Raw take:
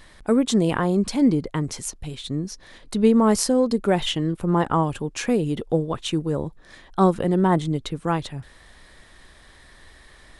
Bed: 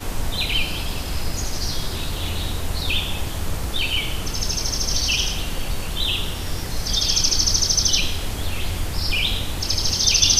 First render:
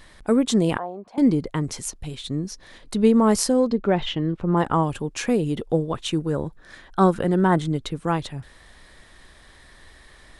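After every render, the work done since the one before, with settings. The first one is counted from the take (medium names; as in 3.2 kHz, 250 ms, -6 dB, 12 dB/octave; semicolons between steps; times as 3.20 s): 0.78–1.18 s: band-pass filter 730 Hz, Q 3.3; 3.70–4.57 s: distance through air 180 m; 6.19–7.81 s: peaking EQ 1.5 kHz +7 dB 0.37 oct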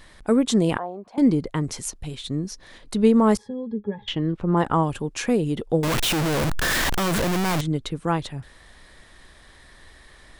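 3.37–4.08 s: pitch-class resonator G#, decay 0.1 s; 5.83–7.61 s: one-bit comparator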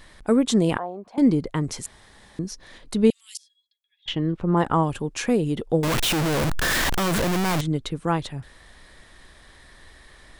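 1.86–2.39 s: room tone; 3.10–4.06 s: elliptic high-pass 2.8 kHz, stop band 80 dB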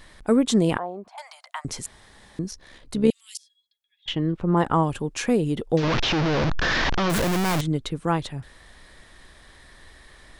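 1.08–1.65 s: steep high-pass 650 Hz 96 dB/octave; 2.51–3.09 s: AM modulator 68 Hz, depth 35%; 5.77–7.10 s: one-bit delta coder 32 kbps, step -25 dBFS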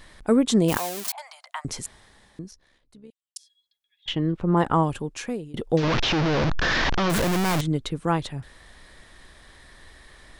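0.68–1.12 s: zero-crossing glitches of -18 dBFS; 1.84–3.36 s: fade out quadratic; 4.85–5.54 s: fade out, to -22.5 dB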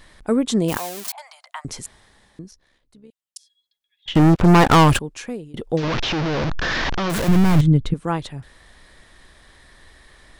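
4.15–4.99 s: waveshaping leveller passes 5; 7.28–7.94 s: tone controls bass +14 dB, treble -5 dB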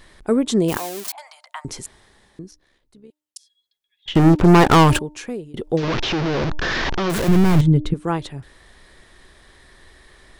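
peaking EQ 380 Hz +6 dB 0.35 oct; de-hum 302.4 Hz, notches 3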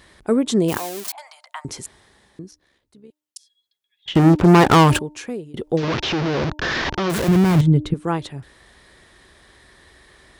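high-pass 52 Hz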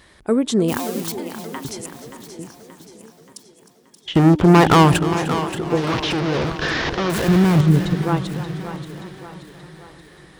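on a send: two-band feedback delay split 300 Hz, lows 410 ms, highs 578 ms, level -10.5 dB; on the sum: modulated delay 307 ms, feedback 63%, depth 98 cents, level -15 dB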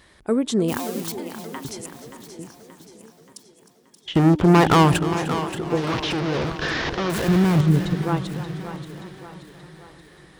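trim -3 dB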